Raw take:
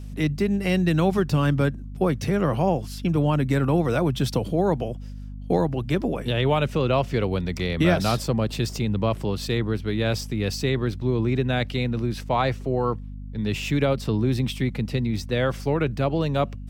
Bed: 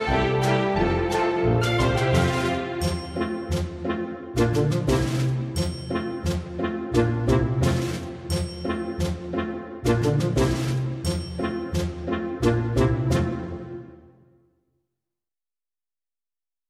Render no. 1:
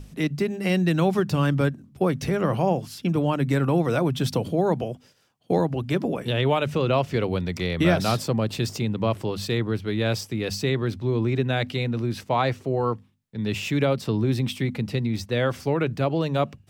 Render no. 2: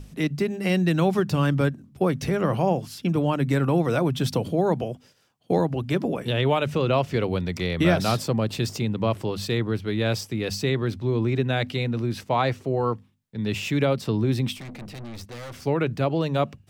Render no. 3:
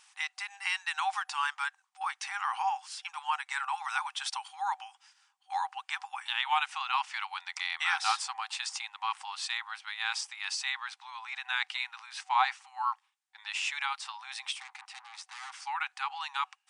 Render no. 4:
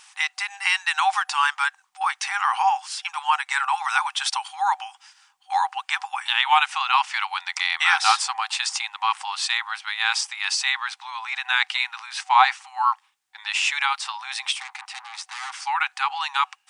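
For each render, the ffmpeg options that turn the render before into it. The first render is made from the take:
-af "bandreject=f=50:t=h:w=6,bandreject=f=100:t=h:w=6,bandreject=f=150:t=h:w=6,bandreject=f=200:t=h:w=6,bandreject=f=250:t=h:w=6"
-filter_complex "[0:a]asettb=1/sr,asplit=3[s0][s1][s2];[s0]atrim=end=14.574[s3];[s1]atrim=start=14.57:end=15.62,asetpts=PTS-STARTPTS,afade=t=in:d=0.004:c=qsin,afade=t=out:st=1.046:d=0.004:c=qsin,aeval=exprs='(tanh(63.1*val(0)+0.4)-tanh(0.4))/63.1':c=same[s4];[s2]atrim=start=15.616[s5];[s3][s4]acrossfade=d=0.004:c1=hsin:c2=qsin[s6];[s6][s5]acrossfade=d=0.004:c1=qsin:c2=hsin"
-af "afftfilt=real='re*between(b*sr/4096,760,10000)':imag='im*between(b*sr/4096,760,10000)':win_size=4096:overlap=0.75,equalizer=f=4200:w=1.5:g=-2.5"
-af "volume=3.35"

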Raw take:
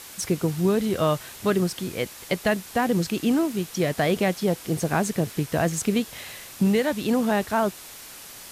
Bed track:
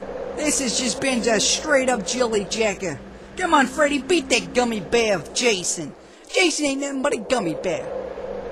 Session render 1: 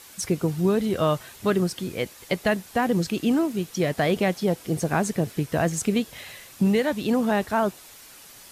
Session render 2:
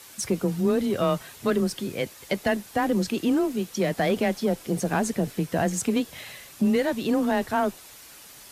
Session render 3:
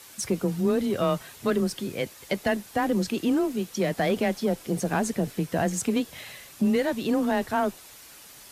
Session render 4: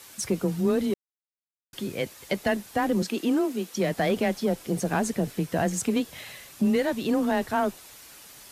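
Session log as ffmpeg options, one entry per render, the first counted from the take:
-af "afftdn=nr=6:nf=-43"
-af "asoftclip=type=tanh:threshold=0.224,afreqshift=19"
-af "volume=0.891"
-filter_complex "[0:a]asettb=1/sr,asplit=3[s0][s1][s2];[s0]atrim=end=3.024[s3];[s1]atrim=start=3.02:end=3.74,asetpts=PTS-STARTPTS,afade=t=in:d=0.004:c=qsin,afade=t=out:st=0.716:d=0.004:c=qsin,highpass=f=200:w=0.5412,highpass=f=200:w=1.3066[s4];[s2]atrim=start=3.736[s5];[s3][s4]acrossfade=d=0.004:c1=hsin:c2=qsin[s6];[s6][s5]acrossfade=d=0.004:c1=qsin:c2=hsin,asplit=3[s7][s8][s9];[s7]atrim=end=0.94,asetpts=PTS-STARTPTS,afade=t=out:st=0.936:d=0.004:c=hsin[s10];[s8]atrim=start=0.94:end=1.73,asetpts=PTS-STARTPTS,volume=0[s11];[s9]atrim=start=1.73,asetpts=PTS-STARTPTS,afade=t=in:d=0.004:c=hsin[s12];[s10][s11][s12]concat=n=3:v=0:a=1"

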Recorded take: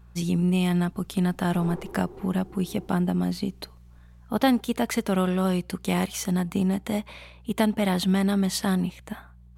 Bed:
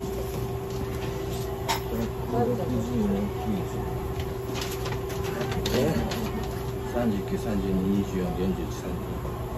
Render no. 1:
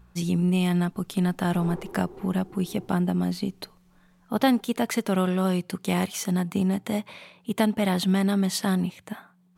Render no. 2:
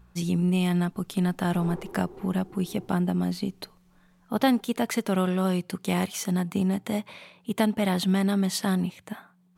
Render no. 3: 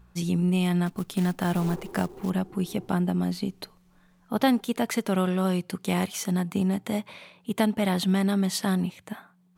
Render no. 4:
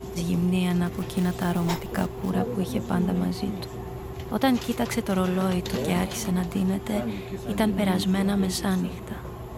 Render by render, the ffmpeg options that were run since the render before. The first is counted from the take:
-af "bandreject=f=60:t=h:w=4,bandreject=f=120:t=h:w=4"
-af "volume=0.891"
-filter_complex "[0:a]asettb=1/sr,asplit=3[s0][s1][s2];[s0]atrim=end=0.864[s3];[s1]atrim=start=0.86:end=2.3,asetpts=PTS-STARTPTS,afade=t=in:d=0.004:c=qsin,afade=t=out:st=1.436:d=0.004:c=qsin,acrusher=bits=5:mode=log:mix=0:aa=0.000001[s4];[s2]atrim=start=2.296[s5];[s3][s4]acrossfade=d=0.004:c1=hsin:c2=qsin[s6];[s6][s5]acrossfade=d=0.004:c1=qsin:c2=hsin"
-filter_complex "[1:a]volume=0.562[s0];[0:a][s0]amix=inputs=2:normalize=0"

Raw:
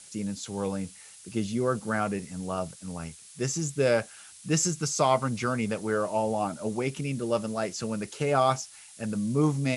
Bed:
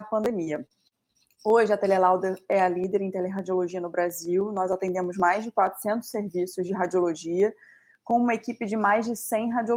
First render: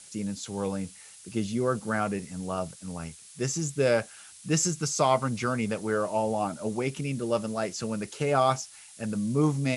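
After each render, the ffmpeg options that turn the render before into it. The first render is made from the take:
-af anull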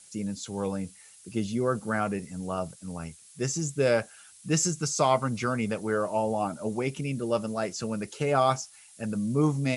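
-af "afftdn=nr=6:nf=-50"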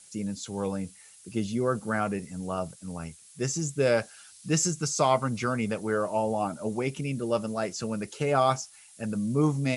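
-filter_complex "[0:a]asettb=1/sr,asplit=3[s0][s1][s2];[s0]atrim=end=3.974[s3];[s1]atrim=start=3.97:end=4.51,asetpts=PTS-STARTPTS,afade=t=in:d=0.004:c=qsin,afade=t=out:st=0.536:d=0.004:c=qsin,equalizer=f=4700:t=o:w=0.77:g=5.5[s4];[s2]atrim=start=4.506[s5];[s3][s4]acrossfade=d=0.004:c1=hsin:c2=qsin[s6];[s6][s5]acrossfade=d=0.004:c1=qsin:c2=hsin"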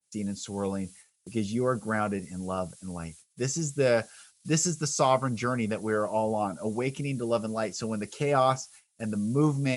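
-af "agate=range=0.0794:threshold=0.00355:ratio=16:detection=peak,adynamicequalizer=threshold=0.0158:dfrequency=1600:dqfactor=0.7:tfrequency=1600:tqfactor=0.7:attack=5:release=100:ratio=0.375:range=1.5:mode=cutabove:tftype=highshelf"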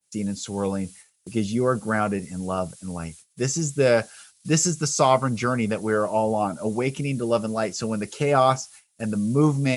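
-af "volume=1.78"

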